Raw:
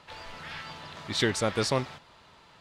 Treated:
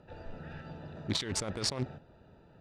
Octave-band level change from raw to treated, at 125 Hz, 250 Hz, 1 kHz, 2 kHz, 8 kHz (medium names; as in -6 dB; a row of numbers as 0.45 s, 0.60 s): -3.5 dB, -5.5 dB, -11.0 dB, -11.5 dB, -1.0 dB